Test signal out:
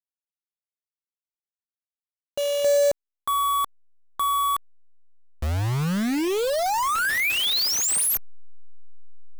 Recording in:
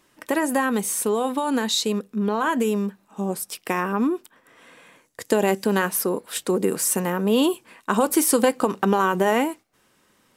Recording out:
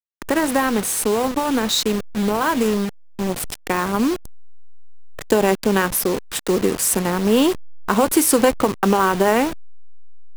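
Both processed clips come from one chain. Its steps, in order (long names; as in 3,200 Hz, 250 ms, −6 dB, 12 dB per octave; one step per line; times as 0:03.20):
hold until the input has moved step −26 dBFS
level +3.5 dB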